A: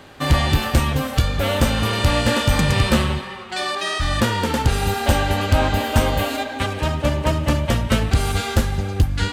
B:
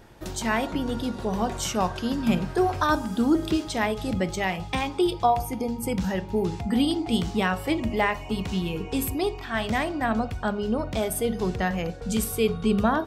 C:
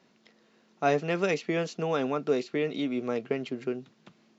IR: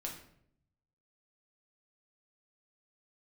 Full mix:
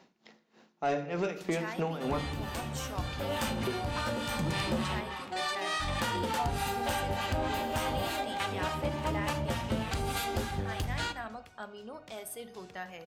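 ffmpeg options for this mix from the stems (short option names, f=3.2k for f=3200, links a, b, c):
-filter_complex "[0:a]lowshelf=f=79:g=-10,acrossover=split=720[a][b];[a]aeval=exprs='val(0)*(1-0.7/2+0.7/2*cos(2*PI*3.4*n/s))':c=same[c];[b]aeval=exprs='val(0)*(1-0.7/2-0.7/2*cos(2*PI*3.4*n/s))':c=same[d];[c][d]amix=inputs=2:normalize=0,adelay=1800,volume=-7dB,asplit=2[e][f];[f]volume=-7dB[g];[1:a]highpass=f=740:p=1,adelay=1150,volume=-13dB,asplit=2[h][i];[i]volume=-11.5dB[j];[2:a]aeval=exprs='val(0)*pow(10,-19*(0.5-0.5*cos(2*PI*3.3*n/s))/20)':c=same,volume=2.5dB,asplit=3[k][l][m];[k]atrim=end=2.25,asetpts=PTS-STARTPTS,afade=t=out:st=2.246:d=0.004:c=hsin[n];[l]atrim=start=2.25:end=3.44,asetpts=PTS-STARTPTS,volume=0[o];[m]atrim=start=3.44,asetpts=PTS-STARTPTS,afade=t=in:d=0.004:c=hsin[p];[n][o][p]concat=n=3:v=0:a=1,asplit=3[q][r][s];[r]volume=-7dB[t];[s]apad=whole_len=490782[u];[e][u]sidechaincompress=threshold=-47dB:ratio=8:attack=16:release=957[v];[v][q]amix=inputs=2:normalize=0,equalizer=f=840:t=o:w=0.43:g=7.5,acompressor=threshold=-30dB:ratio=6,volume=0dB[w];[3:a]atrim=start_sample=2205[x];[g][j][t]amix=inputs=3:normalize=0[y];[y][x]afir=irnorm=-1:irlink=0[z];[h][w][z]amix=inputs=3:normalize=0,asoftclip=type=tanh:threshold=-22.5dB"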